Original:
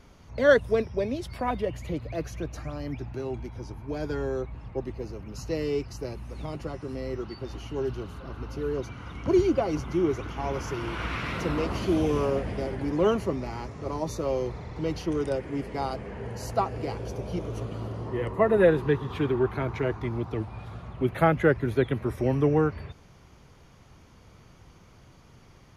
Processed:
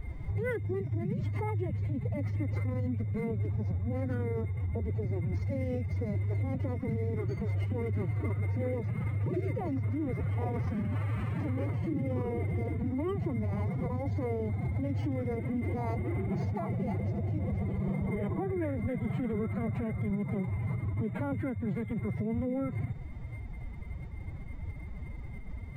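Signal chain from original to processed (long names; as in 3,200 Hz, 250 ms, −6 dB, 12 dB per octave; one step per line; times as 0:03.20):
spectral tilt −4 dB per octave
downward compressor 6 to 1, threshold −24 dBFS, peak gain reduction 15 dB
brickwall limiter −24.5 dBFS, peak gain reduction 10 dB
steady tone 2,100 Hz −51 dBFS
phase-vocoder pitch shift with formants kept +9.5 semitones
linearly interpolated sample-rate reduction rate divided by 4×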